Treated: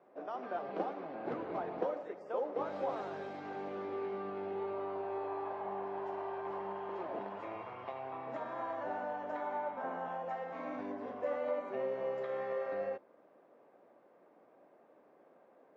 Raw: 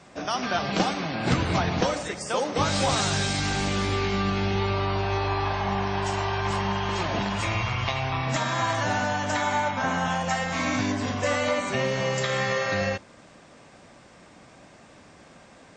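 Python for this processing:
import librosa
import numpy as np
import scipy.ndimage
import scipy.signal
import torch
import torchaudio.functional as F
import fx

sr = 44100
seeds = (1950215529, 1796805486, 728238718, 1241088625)

y = fx.ladder_bandpass(x, sr, hz=540.0, resonance_pct=30)
y = y * librosa.db_to_amplitude(1.0)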